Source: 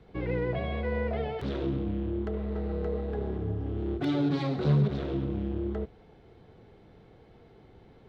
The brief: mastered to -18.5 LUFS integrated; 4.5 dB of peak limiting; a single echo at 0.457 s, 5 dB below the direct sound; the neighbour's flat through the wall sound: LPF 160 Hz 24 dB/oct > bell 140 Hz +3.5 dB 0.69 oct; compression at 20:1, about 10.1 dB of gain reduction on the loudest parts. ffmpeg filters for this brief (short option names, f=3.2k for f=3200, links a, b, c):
-af "acompressor=threshold=-29dB:ratio=20,alimiter=level_in=3.5dB:limit=-24dB:level=0:latency=1,volume=-3.5dB,lowpass=f=160:w=0.5412,lowpass=f=160:w=1.3066,equalizer=f=140:t=o:w=0.69:g=3.5,aecho=1:1:457:0.562,volume=20.5dB"